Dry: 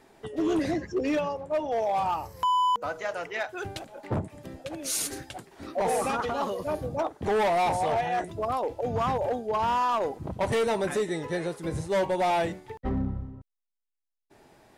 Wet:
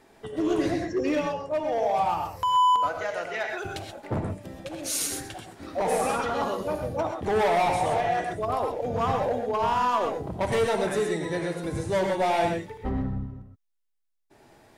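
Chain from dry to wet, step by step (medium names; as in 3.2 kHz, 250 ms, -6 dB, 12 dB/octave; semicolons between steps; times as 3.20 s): gated-style reverb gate 150 ms rising, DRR 3 dB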